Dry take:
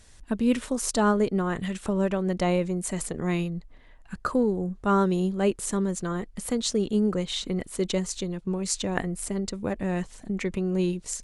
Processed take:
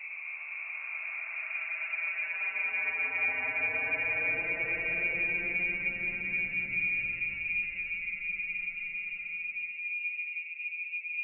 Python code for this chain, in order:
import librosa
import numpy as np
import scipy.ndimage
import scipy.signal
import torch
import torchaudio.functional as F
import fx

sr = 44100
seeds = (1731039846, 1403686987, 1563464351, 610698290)

y = fx.freq_invert(x, sr, carrier_hz=2600)
y = fx.paulstretch(y, sr, seeds[0], factor=29.0, window_s=0.1, from_s=3.17)
y = fx.echo_heads(y, sr, ms=221, heads='first and second', feedback_pct=53, wet_db=-21.0)
y = y * 10.0 ** (-6.5 / 20.0)